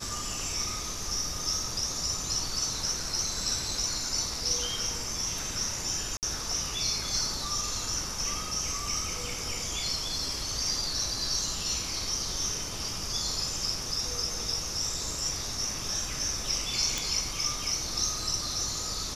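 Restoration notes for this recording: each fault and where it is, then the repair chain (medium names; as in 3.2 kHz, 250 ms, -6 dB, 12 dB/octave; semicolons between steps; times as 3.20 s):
6.17–6.23 s: dropout 58 ms
16.98 s: pop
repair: de-click; interpolate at 6.17 s, 58 ms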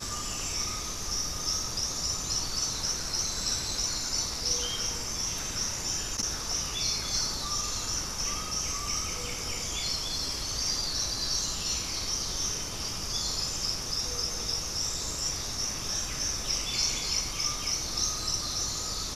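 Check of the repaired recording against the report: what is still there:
nothing left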